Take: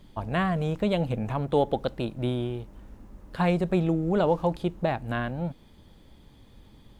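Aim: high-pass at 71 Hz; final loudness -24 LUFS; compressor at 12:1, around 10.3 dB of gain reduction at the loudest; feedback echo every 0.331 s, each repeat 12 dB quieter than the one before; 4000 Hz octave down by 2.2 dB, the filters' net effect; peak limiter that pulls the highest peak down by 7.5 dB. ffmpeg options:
-af "highpass=71,equalizer=f=4k:t=o:g=-3,acompressor=threshold=-29dB:ratio=12,alimiter=level_in=2.5dB:limit=-24dB:level=0:latency=1,volume=-2.5dB,aecho=1:1:331|662|993:0.251|0.0628|0.0157,volume=12.5dB"

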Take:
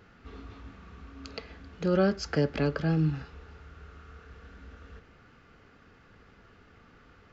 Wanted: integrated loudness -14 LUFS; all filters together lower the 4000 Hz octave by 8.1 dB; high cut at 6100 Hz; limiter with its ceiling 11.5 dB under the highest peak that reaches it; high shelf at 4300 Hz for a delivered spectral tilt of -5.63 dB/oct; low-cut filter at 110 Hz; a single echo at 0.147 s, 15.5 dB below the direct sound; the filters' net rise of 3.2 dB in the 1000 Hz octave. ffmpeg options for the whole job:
-af "highpass=110,lowpass=6.1k,equalizer=f=1k:t=o:g=5.5,equalizer=f=4k:t=o:g=-7.5,highshelf=f=4.3k:g=-4,alimiter=level_in=1.5dB:limit=-24dB:level=0:latency=1,volume=-1.5dB,aecho=1:1:147:0.168,volume=24dB"

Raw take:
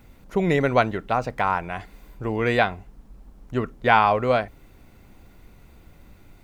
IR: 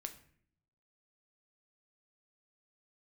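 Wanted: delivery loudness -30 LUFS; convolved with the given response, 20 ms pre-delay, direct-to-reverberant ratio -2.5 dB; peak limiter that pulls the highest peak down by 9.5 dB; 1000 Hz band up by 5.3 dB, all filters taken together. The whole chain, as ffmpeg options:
-filter_complex "[0:a]equalizer=f=1k:t=o:g=7,alimiter=limit=-7.5dB:level=0:latency=1,asplit=2[a][b];[1:a]atrim=start_sample=2205,adelay=20[c];[b][c]afir=irnorm=-1:irlink=0,volume=5.5dB[d];[a][d]amix=inputs=2:normalize=0,volume=-11.5dB"

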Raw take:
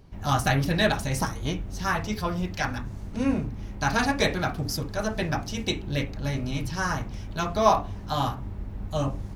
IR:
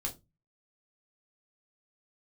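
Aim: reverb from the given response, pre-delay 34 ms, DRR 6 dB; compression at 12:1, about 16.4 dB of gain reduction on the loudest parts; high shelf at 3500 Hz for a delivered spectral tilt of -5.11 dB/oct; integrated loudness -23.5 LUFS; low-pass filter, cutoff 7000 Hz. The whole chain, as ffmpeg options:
-filter_complex "[0:a]lowpass=7k,highshelf=f=3.5k:g=3,acompressor=threshold=-30dB:ratio=12,asplit=2[a][b];[1:a]atrim=start_sample=2205,adelay=34[c];[b][c]afir=irnorm=-1:irlink=0,volume=-7dB[d];[a][d]amix=inputs=2:normalize=0,volume=10.5dB"

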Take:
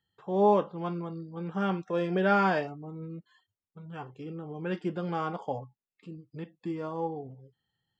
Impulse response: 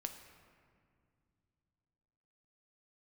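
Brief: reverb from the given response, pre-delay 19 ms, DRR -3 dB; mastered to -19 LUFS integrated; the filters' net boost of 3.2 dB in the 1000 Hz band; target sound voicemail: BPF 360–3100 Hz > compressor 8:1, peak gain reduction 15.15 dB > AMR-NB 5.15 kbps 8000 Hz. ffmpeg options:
-filter_complex "[0:a]equalizer=f=1k:t=o:g=4.5,asplit=2[a][b];[1:a]atrim=start_sample=2205,adelay=19[c];[b][c]afir=irnorm=-1:irlink=0,volume=5dB[d];[a][d]amix=inputs=2:normalize=0,highpass=360,lowpass=3.1k,acompressor=threshold=-27dB:ratio=8,volume=16dB" -ar 8000 -c:a libopencore_amrnb -b:a 5150

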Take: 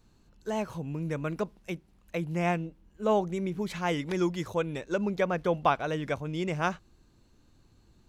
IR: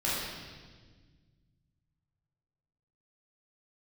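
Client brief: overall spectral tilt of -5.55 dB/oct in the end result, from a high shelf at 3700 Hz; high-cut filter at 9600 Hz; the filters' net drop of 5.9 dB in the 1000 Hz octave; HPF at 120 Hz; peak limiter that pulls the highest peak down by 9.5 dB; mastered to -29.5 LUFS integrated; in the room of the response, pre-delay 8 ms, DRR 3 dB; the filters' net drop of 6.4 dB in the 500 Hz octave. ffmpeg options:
-filter_complex "[0:a]highpass=120,lowpass=9.6k,equalizer=f=500:t=o:g=-7,equalizer=f=1k:t=o:g=-4.5,highshelf=f=3.7k:g=-8.5,alimiter=level_in=1.5dB:limit=-24dB:level=0:latency=1,volume=-1.5dB,asplit=2[a][b];[1:a]atrim=start_sample=2205,adelay=8[c];[b][c]afir=irnorm=-1:irlink=0,volume=-12.5dB[d];[a][d]amix=inputs=2:normalize=0,volume=5dB"

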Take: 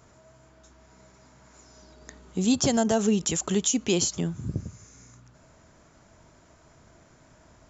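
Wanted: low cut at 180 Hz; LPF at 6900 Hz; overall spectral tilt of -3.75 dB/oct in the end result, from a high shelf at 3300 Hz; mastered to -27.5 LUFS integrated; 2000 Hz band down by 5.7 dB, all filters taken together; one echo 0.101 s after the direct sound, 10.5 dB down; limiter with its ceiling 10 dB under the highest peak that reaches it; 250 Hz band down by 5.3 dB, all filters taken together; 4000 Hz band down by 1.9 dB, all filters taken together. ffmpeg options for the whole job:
-af "highpass=180,lowpass=6.9k,equalizer=f=250:t=o:g=-4.5,equalizer=f=2k:t=o:g=-9,highshelf=f=3.3k:g=6.5,equalizer=f=4k:t=o:g=-4.5,alimiter=limit=-21dB:level=0:latency=1,aecho=1:1:101:0.299,volume=3.5dB"

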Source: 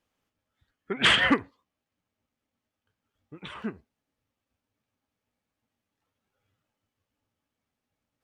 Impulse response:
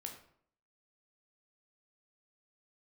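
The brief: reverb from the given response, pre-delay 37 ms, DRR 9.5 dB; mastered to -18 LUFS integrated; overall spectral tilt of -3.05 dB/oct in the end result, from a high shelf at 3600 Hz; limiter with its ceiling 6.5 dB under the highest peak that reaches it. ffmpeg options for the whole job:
-filter_complex "[0:a]highshelf=f=3.6k:g=5,alimiter=limit=-14.5dB:level=0:latency=1,asplit=2[a][b];[1:a]atrim=start_sample=2205,adelay=37[c];[b][c]afir=irnorm=-1:irlink=0,volume=-6.5dB[d];[a][d]amix=inputs=2:normalize=0,volume=8dB"

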